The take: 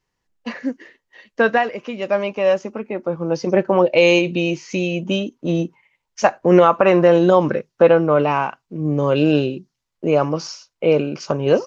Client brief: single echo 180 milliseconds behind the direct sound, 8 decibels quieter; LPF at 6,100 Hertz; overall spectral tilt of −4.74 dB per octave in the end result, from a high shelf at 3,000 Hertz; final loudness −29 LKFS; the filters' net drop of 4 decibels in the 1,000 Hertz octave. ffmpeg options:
ffmpeg -i in.wav -af "lowpass=6100,equalizer=frequency=1000:width_type=o:gain=-4.5,highshelf=frequency=3000:gain=-8.5,aecho=1:1:180:0.398,volume=-10dB" out.wav

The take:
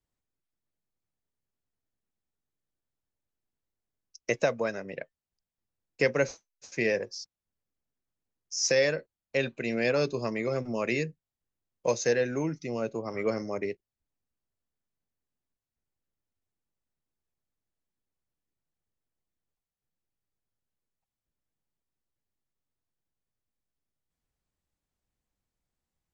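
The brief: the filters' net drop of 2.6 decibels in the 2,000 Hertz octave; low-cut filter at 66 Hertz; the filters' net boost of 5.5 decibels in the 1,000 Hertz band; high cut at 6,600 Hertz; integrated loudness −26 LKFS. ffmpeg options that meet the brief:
ffmpeg -i in.wav -af "highpass=66,lowpass=6600,equalizer=frequency=1000:width_type=o:gain=8.5,equalizer=frequency=2000:width_type=o:gain=-5.5,volume=3dB" out.wav

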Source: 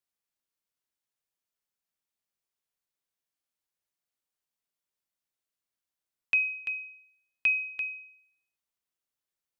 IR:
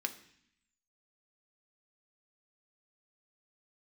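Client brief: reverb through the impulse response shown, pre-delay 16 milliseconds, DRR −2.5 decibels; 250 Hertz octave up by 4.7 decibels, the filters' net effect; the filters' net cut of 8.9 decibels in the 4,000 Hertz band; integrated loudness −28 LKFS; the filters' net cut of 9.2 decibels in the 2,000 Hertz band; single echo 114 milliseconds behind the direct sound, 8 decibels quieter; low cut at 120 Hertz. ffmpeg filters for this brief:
-filter_complex "[0:a]highpass=120,equalizer=frequency=250:width_type=o:gain=6.5,equalizer=frequency=2000:width_type=o:gain=-9,equalizer=frequency=4000:width_type=o:gain=-8.5,aecho=1:1:114:0.398,asplit=2[link_01][link_02];[1:a]atrim=start_sample=2205,adelay=16[link_03];[link_02][link_03]afir=irnorm=-1:irlink=0,volume=0.5dB[link_04];[link_01][link_04]amix=inputs=2:normalize=0,volume=8dB"

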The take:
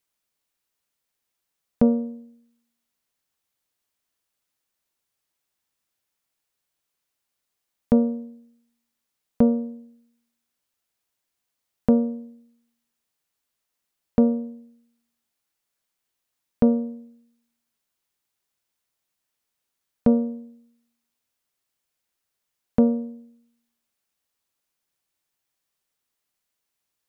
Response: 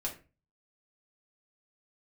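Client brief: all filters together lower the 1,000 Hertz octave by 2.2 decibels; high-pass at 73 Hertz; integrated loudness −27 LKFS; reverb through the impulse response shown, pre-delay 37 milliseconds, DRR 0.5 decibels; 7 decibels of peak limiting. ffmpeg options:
-filter_complex "[0:a]highpass=73,equalizer=frequency=1000:width_type=o:gain=-3.5,alimiter=limit=-14dB:level=0:latency=1,asplit=2[link_01][link_02];[1:a]atrim=start_sample=2205,adelay=37[link_03];[link_02][link_03]afir=irnorm=-1:irlink=0,volume=-2.5dB[link_04];[link_01][link_04]amix=inputs=2:normalize=0,volume=-1dB"

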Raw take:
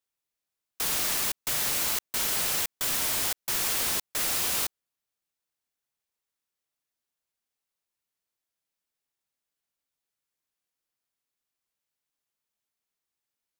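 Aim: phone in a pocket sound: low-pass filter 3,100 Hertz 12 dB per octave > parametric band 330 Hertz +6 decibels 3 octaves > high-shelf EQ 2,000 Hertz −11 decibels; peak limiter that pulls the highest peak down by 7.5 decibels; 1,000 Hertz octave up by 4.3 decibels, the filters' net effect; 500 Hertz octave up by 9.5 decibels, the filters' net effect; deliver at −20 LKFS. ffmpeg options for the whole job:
ffmpeg -i in.wav -af "equalizer=frequency=500:width_type=o:gain=5.5,equalizer=frequency=1000:width_type=o:gain=3,alimiter=limit=-21.5dB:level=0:latency=1,lowpass=3100,equalizer=frequency=330:width_type=o:width=3:gain=6,highshelf=frequency=2000:gain=-11,volume=18.5dB" out.wav

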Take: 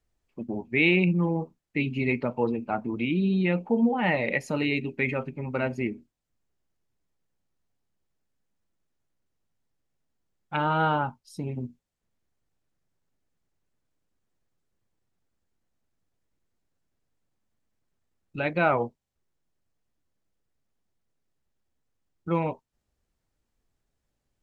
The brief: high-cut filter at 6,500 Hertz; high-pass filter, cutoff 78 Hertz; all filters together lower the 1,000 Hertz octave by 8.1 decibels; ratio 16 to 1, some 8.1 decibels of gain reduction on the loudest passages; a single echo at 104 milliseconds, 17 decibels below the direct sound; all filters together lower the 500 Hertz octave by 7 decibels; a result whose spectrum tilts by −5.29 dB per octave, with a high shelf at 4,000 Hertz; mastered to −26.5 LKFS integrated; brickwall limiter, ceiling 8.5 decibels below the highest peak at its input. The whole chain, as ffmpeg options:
ffmpeg -i in.wav -af "highpass=78,lowpass=6500,equalizer=frequency=500:width_type=o:gain=-7,equalizer=frequency=1000:width_type=o:gain=-8,highshelf=frequency=4000:gain=-6,acompressor=threshold=-27dB:ratio=16,alimiter=level_in=1.5dB:limit=-24dB:level=0:latency=1,volume=-1.5dB,aecho=1:1:104:0.141,volume=9.5dB" out.wav

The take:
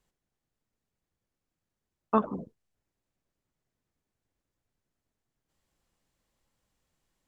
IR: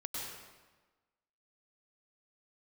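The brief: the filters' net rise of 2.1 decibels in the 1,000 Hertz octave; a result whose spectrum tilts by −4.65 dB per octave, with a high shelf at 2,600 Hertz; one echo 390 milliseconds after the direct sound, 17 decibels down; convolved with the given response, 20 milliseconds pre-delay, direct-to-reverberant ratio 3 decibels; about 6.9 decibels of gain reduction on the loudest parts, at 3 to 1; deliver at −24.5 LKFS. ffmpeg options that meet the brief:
-filter_complex "[0:a]equalizer=frequency=1000:width_type=o:gain=3.5,highshelf=frequency=2600:gain=-6.5,acompressor=threshold=-26dB:ratio=3,aecho=1:1:390:0.141,asplit=2[link_01][link_02];[1:a]atrim=start_sample=2205,adelay=20[link_03];[link_02][link_03]afir=irnorm=-1:irlink=0,volume=-4dB[link_04];[link_01][link_04]amix=inputs=2:normalize=0,volume=10.5dB"

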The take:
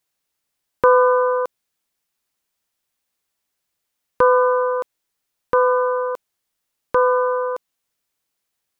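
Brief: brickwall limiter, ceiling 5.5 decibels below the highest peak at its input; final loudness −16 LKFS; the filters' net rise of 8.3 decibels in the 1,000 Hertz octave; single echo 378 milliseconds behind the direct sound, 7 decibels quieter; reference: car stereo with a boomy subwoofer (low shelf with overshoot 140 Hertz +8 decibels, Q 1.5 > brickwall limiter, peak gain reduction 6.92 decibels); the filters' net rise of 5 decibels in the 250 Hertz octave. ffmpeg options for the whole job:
ffmpeg -i in.wav -af "equalizer=frequency=250:width_type=o:gain=8,equalizer=frequency=1000:width_type=o:gain=8.5,alimiter=limit=-3dB:level=0:latency=1,lowshelf=frequency=140:width_type=q:width=1.5:gain=8,aecho=1:1:378:0.447,volume=3dB,alimiter=limit=-6.5dB:level=0:latency=1" out.wav

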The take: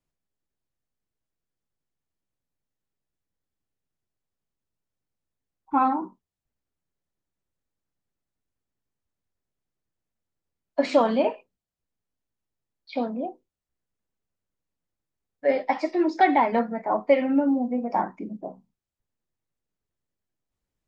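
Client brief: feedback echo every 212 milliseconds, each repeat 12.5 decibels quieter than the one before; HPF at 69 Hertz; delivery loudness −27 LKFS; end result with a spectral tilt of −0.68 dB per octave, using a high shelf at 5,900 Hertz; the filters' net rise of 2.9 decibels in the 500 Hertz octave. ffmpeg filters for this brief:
ffmpeg -i in.wav -af "highpass=69,equalizer=frequency=500:width_type=o:gain=3.5,highshelf=frequency=5900:gain=-8.5,aecho=1:1:212|424|636:0.237|0.0569|0.0137,volume=-4.5dB" out.wav

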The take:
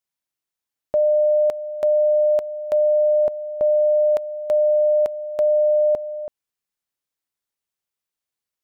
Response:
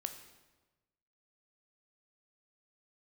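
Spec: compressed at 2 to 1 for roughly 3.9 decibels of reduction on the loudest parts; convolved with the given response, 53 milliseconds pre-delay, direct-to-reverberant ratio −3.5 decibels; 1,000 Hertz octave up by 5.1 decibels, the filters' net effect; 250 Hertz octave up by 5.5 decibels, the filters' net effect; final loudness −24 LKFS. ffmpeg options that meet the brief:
-filter_complex "[0:a]equalizer=frequency=250:width_type=o:gain=7,equalizer=frequency=1000:width_type=o:gain=7.5,acompressor=threshold=-19dB:ratio=2,asplit=2[link_01][link_02];[1:a]atrim=start_sample=2205,adelay=53[link_03];[link_02][link_03]afir=irnorm=-1:irlink=0,volume=4.5dB[link_04];[link_01][link_04]amix=inputs=2:normalize=0,volume=-12.5dB"

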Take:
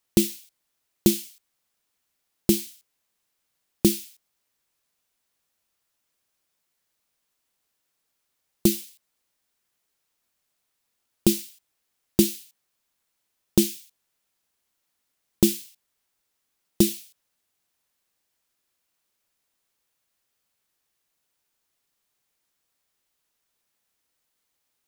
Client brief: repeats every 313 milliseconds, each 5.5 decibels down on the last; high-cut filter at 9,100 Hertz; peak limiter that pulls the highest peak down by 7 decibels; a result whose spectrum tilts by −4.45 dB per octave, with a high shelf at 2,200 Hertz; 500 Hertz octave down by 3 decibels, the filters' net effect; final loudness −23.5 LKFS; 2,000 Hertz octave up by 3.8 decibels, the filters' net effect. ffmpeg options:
ffmpeg -i in.wav -af "lowpass=9100,equalizer=frequency=500:width_type=o:gain=-6,equalizer=frequency=2000:width_type=o:gain=8.5,highshelf=frequency=2200:gain=-4.5,alimiter=limit=-12.5dB:level=0:latency=1,aecho=1:1:313|626|939|1252|1565|1878|2191:0.531|0.281|0.149|0.079|0.0419|0.0222|0.0118,volume=10.5dB" out.wav

